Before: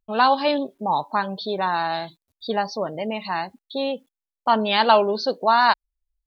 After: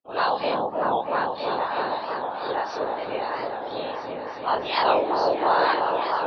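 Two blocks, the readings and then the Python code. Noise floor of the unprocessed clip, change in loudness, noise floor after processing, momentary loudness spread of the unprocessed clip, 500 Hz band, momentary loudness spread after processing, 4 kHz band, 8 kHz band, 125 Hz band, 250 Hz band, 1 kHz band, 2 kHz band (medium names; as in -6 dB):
under -85 dBFS, -3.0 dB, -35 dBFS, 12 LU, -1.0 dB, 10 LU, -5.5 dB, no reading, -6.0 dB, -6.0 dB, -2.5 dB, -3.0 dB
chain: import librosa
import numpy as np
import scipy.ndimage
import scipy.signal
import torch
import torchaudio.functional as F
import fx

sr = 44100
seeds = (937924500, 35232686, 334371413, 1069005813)

p1 = fx.spec_dilate(x, sr, span_ms=60)
p2 = scipy.signal.sosfilt(scipy.signal.butter(4, 300.0, 'highpass', fs=sr, output='sos'), p1)
p3 = fx.high_shelf(p2, sr, hz=4800.0, db=-7.5)
p4 = fx.whisperise(p3, sr, seeds[0])
p5 = p4 + fx.echo_opening(p4, sr, ms=322, hz=750, octaves=1, feedback_pct=70, wet_db=0, dry=0)
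p6 = fx.record_warp(p5, sr, rpm=45.0, depth_cents=160.0)
y = F.gain(torch.from_numpy(p6), -8.0).numpy()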